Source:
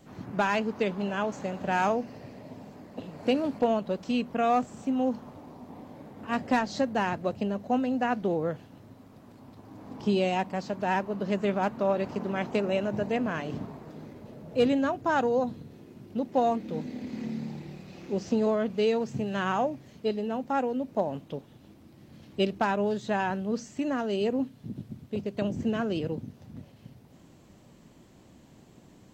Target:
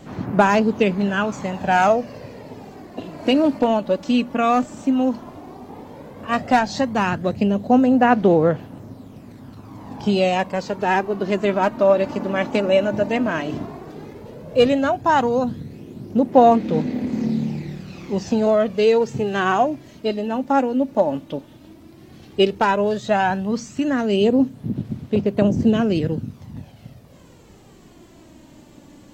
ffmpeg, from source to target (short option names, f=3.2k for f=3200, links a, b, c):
-af "aphaser=in_gain=1:out_gain=1:delay=3.5:decay=0.44:speed=0.12:type=sinusoidal,volume=8dB"